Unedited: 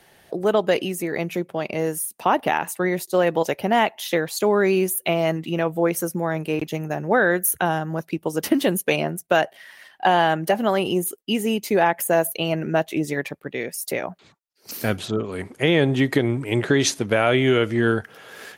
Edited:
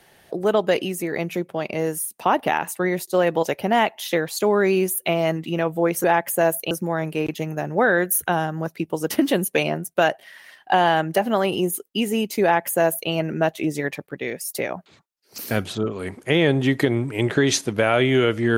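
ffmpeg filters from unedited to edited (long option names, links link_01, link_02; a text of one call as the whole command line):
ffmpeg -i in.wav -filter_complex "[0:a]asplit=3[link_01][link_02][link_03];[link_01]atrim=end=6.042[link_04];[link_02]atrim=start=11.758:end=12.432[link_05];[link_03]atrim=start=6.038[link_06];[link_04][link_05]acrossfade=duration=0.004:curve1=hsin:curve2=hsin[link_07];[link_07][link_06]acrossfade=duration=0.004:curve1=hsin:curve2=hsin" out.wav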